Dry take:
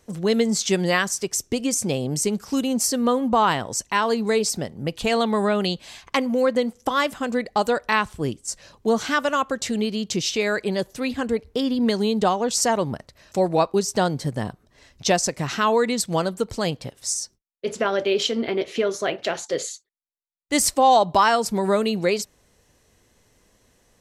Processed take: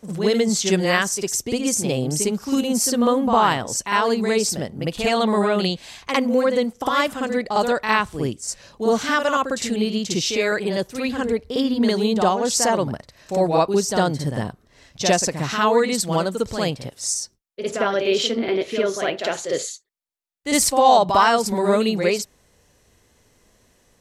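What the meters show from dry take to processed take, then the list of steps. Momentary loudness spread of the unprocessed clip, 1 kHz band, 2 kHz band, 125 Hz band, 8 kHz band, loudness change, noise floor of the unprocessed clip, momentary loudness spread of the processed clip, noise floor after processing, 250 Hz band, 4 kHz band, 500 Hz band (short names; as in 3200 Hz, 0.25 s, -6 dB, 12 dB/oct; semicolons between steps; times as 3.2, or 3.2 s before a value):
8 LU, +2.0 dB, +2.0 dB, +2.0 dB, +2.0 dB, +2.0 dB, -63 dBFS, 8 LU, -60 dBFS, +2.0 dB, +2.0 dB, +2.0 dB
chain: reverse echo 55 ms -6 dB; gain +1 dB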